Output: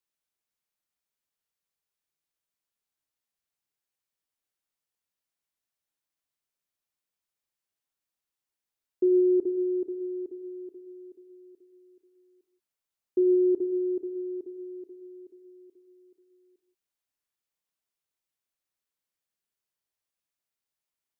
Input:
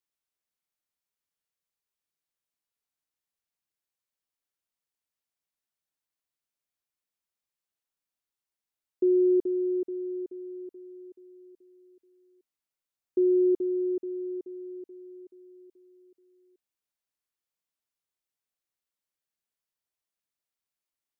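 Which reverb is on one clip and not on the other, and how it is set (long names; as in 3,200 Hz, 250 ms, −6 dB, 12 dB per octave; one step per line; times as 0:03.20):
reverb whose tail is shaped and stops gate 200 ms flat, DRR 8.5 dB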